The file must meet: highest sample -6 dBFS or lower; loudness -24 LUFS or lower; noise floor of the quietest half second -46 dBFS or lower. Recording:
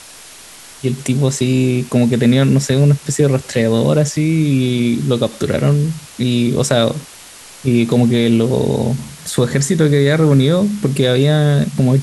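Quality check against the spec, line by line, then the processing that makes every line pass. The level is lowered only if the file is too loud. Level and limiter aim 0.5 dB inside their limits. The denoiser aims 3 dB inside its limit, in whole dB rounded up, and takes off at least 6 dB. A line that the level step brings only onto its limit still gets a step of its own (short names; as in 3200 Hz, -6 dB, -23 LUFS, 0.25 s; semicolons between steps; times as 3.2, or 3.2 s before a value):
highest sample -2.5 dBFS: fail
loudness -15.0 LUFS: fail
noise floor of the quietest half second -38 dBFS: fail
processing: gain -9.5 dB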